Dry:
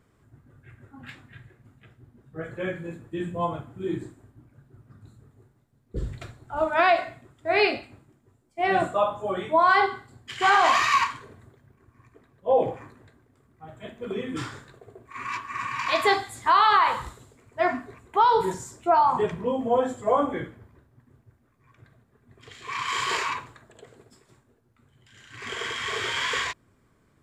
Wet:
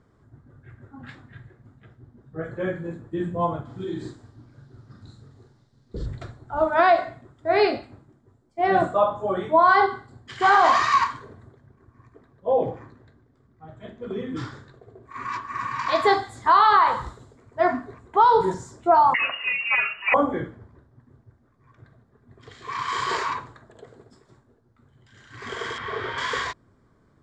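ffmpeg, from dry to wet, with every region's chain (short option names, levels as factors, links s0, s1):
-filter_complex "[0:a]asettb=1/sr,asplit=3[s0][s1][s2];[s0]atrim=end=3.654[s3];[s1]atrim=start=3.65:end=6.06,asetpts=PTS-STARTPTS,afade=t=in:d=0.004:c=qsin,afade=t=out:st=2.406:d=0.004:c=qsin,acompressor=threshold=0.0251:ratio=4:attack=3.2:release=140:knee=1:detection=peak,equalizer=f=4600:w=0.77:g=15,asplit=2[s4][s5];[s5]adelay=44,volume=0.596[s6];[s4][s6]amix=inputs=2:normalize=0,atrim=end_sample=106281[s7];[s2]atrim=start=6.056[s8];[s3][s7]acrossfade=d=0.004:c1=hsin:c2=qsin[s9];[s9][s8]acrossfade=d=0.004:c1=qsin:c2=hsin,asettb=1/sr,asplit=3[s10][s11][s12];[s10]atrim=end=12.494[s13];[s11]atrim=start=12.49:end=15.03,asetpts=PTS-STARTPTS,afade=t=in:d=0.004:c=qsin,afade=t=out:st=2.536:d=0.004:c=qsin,lowpass=6700,equalizer=f=830:t=o:w=2.5:g=-4.5,bandreject=f=50:t=h:w=6,bandreject=f=100:t=h:w=6,bandreject=f=150:t=h:w=6,bandreject=f=200:t=h:w=6,bandreject=f=250:t=h:w=6,bandreject=f=300:t=h:w=6,bandreject=f=350:t=h:w=6,bandreject=f=400:t=h:w=6,bandreject=f=450:t=h:w=6[s14];[s12]atrim=start=15.026[s15];[s13][s14]acrossfade=d=0.004:c1=hsin:c2=qsin[s16];[s16][s15]acrossfade=d=0.004:c1=qsin:c2=hsin,asettb=1/sr,asplit=3[s17][s18][s19];[s17]atrim=end=19.144[s20];[s18]atrim=start=19.14:end=20.14,asetpts=PTS-STARTPTS,afade=t=in:d=0.004:c=qsin,afade=t=out:st=0.996:d=0.004:c=qsin,aeval=exprs='0.316*sin(PI/2*1.58*val(0)/0.316)':c=same,lowpass=f=2600:t=q:w=0.5098,lowpass=f=2600:t=q:w=0.6013,lowpass=f=2600:t=q:w=0.9,lowpass=f=2600:t=q:w=2.563,afreqshift=-3000[s21];[s19]atrim=start=20.136[s22];[s20][s21]acrossfade=d=0.004:c1=hsin:c2=qsin[s23];[s23][s22]acrossfade=d=0.004:c1=qsin:c2=hsin,asettb=1/sr,asplit=3[s24][s25][s26];[s24]atrim=end=25.784[s27];[s25]atrim=start=25.78:end=26.18,asetpts=PTS-STARTPTS,afade=t=in:d=0.004:c=qsin,afade=t=out:st=0.396:d=0.004:c=qsin,acrossover=split=4600[s28][s29];[s29]acompressor=threshold=0.00158:ratio=4:attack=1:release=60[s30];[s28][s30]amix=inputs=2:normalize=0,highshelf=f=3500:g=-10.5[s31];[s26]atrim=start=26.176[s32];[s27][s31]acrossfade=d=0.004:c1=hsin:c2=qsin[s33];[s33][s32]acrossfade=d=0.004:c1=qsin:c2=hsin,lowpass=4900,equalizer=f=2600:w=2:g=-11.5,volume=1.5"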